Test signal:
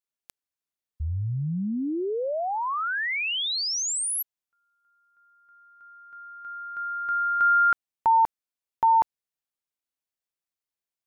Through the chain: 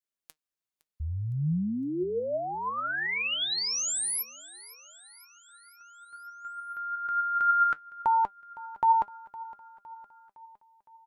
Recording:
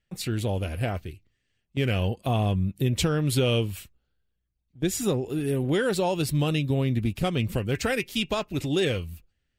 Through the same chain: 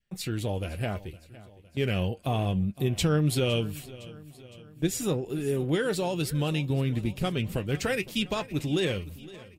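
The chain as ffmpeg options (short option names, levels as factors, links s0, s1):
-af "adynamicequalizer=threshold=0.0178:dfrequency=890:dqfactor=1.3:tfrequency=890:tqfactor=1.3:attack=5:release=100:ratio=0.375:range=2:mode=cutabove:tftype=bell,flanger=delay=4.8:depth=1.9:regen=68:speed=1.1:shape=sinusoidal,aecho=1:1:511|1022|1533|2044|2555:0.112|0.064|0.0365|0.0208|0.0118,volume=1.26"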